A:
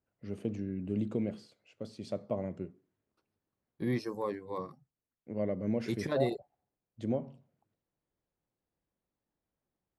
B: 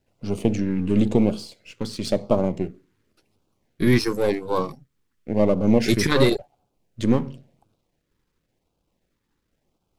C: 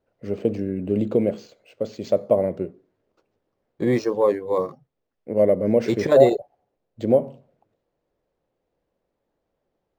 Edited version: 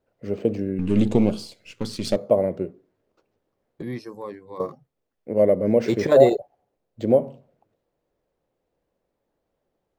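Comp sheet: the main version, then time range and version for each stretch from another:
C
0.79–2.16 s: from B
3.82–4.60 s: from A

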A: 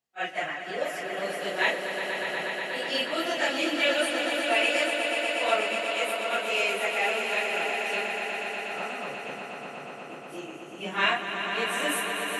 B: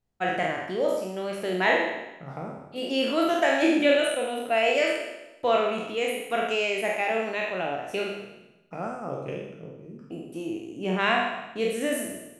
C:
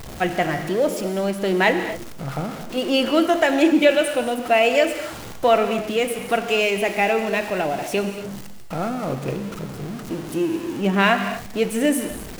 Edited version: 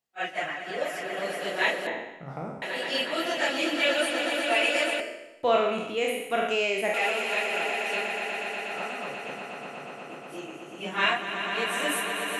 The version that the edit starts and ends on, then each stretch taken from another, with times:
A
1.87–2.62 s: from B
5.00–6.94 s: from B
not used: C

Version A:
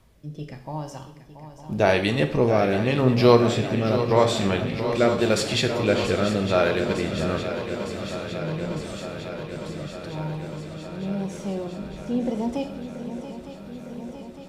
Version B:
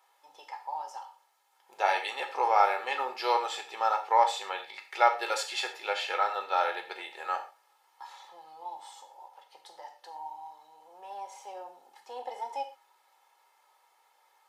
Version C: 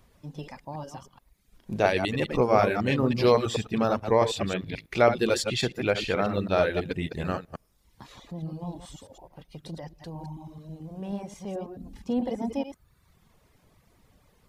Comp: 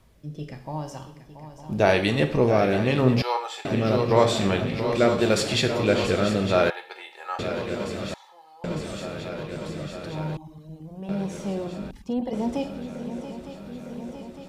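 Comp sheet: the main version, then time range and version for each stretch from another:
A
3.22–3.65 s: from B
6.70–7.39 s: from B
8.14–8.64 s: from B
10.37–11.09 s: from C
11.91–12.33 s: from C

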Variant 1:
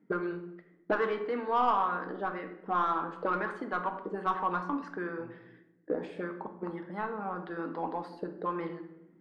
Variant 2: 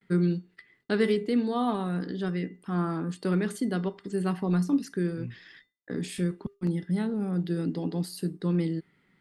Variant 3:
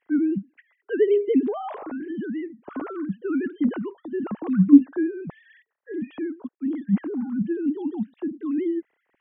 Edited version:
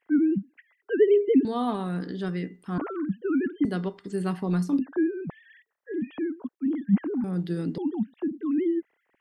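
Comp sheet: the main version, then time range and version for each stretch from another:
3
1.45–2.78 s: from 2
3.65–4.79 s: from 2
7.24–7.78 s: from 2
not used: 1

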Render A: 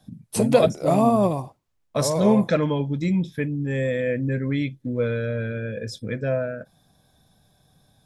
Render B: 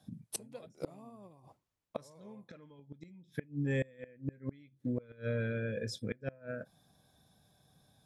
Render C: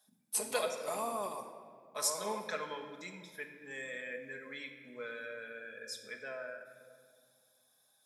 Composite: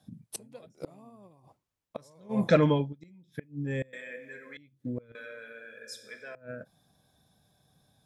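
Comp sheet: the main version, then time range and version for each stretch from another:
B
2.41–2.83 s: from A, crossfade 0.24 s
3.93–4.57 s: from C
5.15–6.35 s: from C

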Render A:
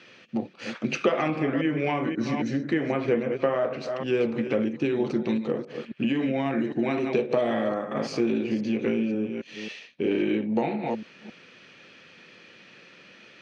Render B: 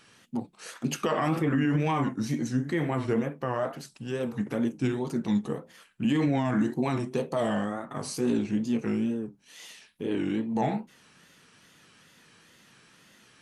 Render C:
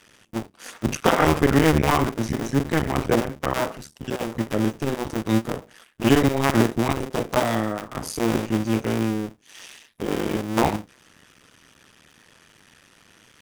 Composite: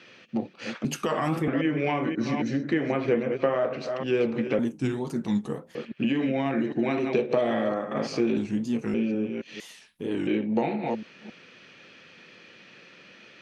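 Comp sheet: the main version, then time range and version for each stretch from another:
A
0.85–1.48 s: from B
4.59–5.75 s: from B
8.37–8.94 s: from B
9.60–10.27 s: from B
not used: C

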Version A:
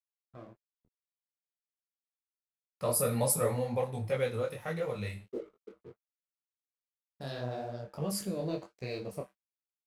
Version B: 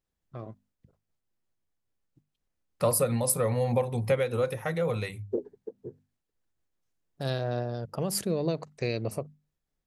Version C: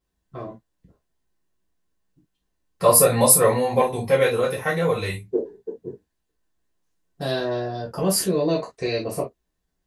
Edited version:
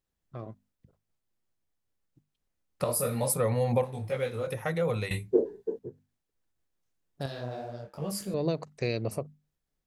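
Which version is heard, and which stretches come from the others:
B
2.84–3.33 s: from A
3.84–4.47 s: from A
5.11–5.79 s: from C
7.26–8.34 s: from A

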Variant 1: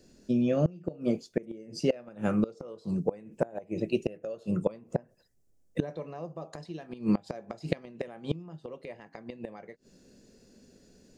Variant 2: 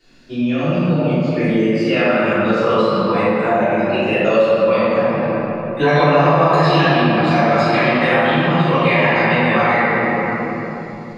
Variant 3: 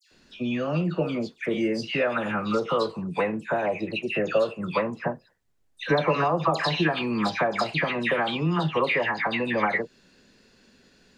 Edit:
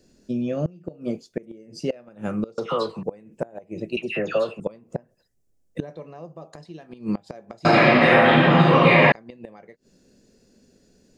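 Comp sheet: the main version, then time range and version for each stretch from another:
1
2.58–3.03 s: from 3
3.97–4.60 s: from 3
7.65–9.12 s: from 2

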